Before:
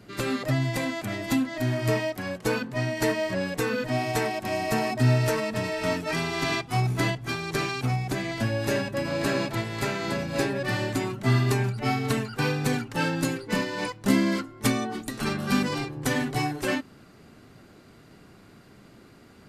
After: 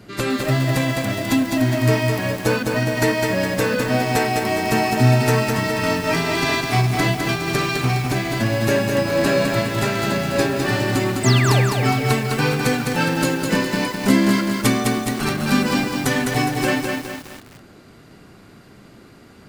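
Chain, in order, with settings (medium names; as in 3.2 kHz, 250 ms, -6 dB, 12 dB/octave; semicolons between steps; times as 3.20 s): painted sound fall, 11.23–11.61 s, 450–8700 Hz -31 dBFS; bit-crushed delay 206 ms, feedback 55%, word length 7-bit, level -3.5 dB; trim +6 dB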